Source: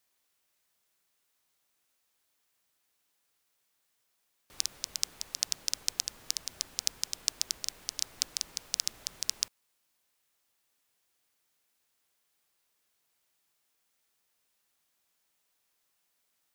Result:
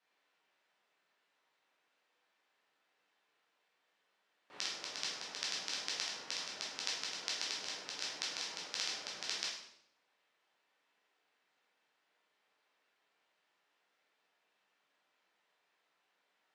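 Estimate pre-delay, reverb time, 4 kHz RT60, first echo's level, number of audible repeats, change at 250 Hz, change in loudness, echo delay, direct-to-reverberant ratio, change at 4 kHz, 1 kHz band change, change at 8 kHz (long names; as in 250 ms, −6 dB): 10 ms, 0.75 s, 0.65 s, no echo audible, no echo audible, +1.5 dB, −5.5 dB, no echo audible, −5.5 dB, −3.5 dB, +6.5 dB, −10.0 dB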